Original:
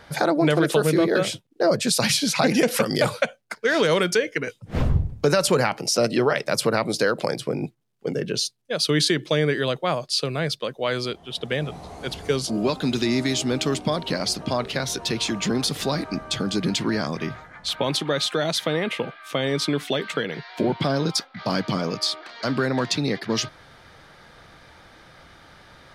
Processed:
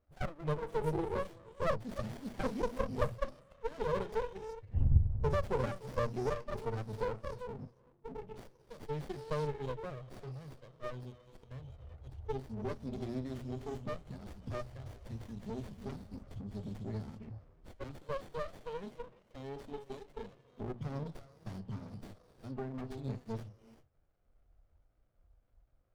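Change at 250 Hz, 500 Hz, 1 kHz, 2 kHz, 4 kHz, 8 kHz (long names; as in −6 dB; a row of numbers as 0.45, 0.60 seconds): −18.5, −16.0, −14.0, −22.5, −31.0, −32.5 decibels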